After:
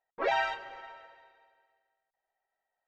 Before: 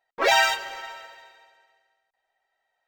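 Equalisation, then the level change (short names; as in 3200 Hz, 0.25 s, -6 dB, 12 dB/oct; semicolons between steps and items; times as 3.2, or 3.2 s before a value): tape spacing loss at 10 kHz 33 dB; -5.0 dB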